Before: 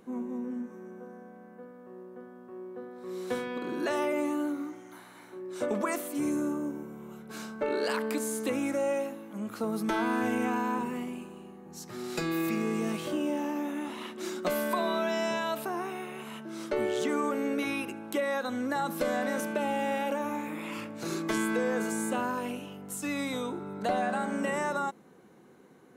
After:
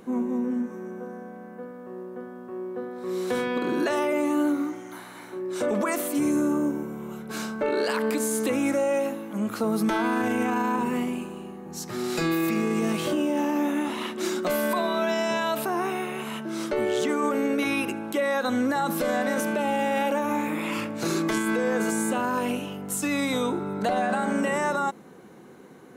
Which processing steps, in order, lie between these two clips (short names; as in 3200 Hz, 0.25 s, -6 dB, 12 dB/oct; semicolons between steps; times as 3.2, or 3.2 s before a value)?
limiter -25.5 dBFS, peak gain reduction 7.5 dB; gain +8.5 dB